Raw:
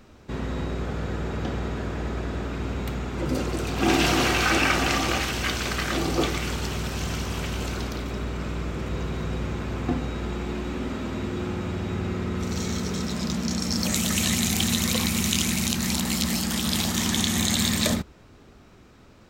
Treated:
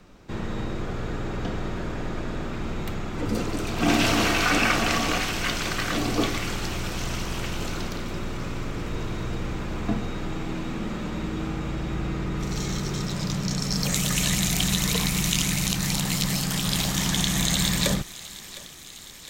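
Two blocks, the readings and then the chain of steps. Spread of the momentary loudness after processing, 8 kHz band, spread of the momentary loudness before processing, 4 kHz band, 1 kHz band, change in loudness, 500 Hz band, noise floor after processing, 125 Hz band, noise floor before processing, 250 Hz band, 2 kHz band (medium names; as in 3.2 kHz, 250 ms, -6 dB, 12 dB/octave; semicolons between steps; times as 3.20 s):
11 LU, 0.0 dB, 10 LU, 0.0 dB, 0.0 dB, -0.5 dB, -1.5 dB, -42 dBFS, +0.5 dB, -51 dBFS, -1.0 dB, 0.0 dB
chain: thinning echo 710 ms, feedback 71%, high-pass 930 Hz, level -16 dB; frequency shift -40 Hz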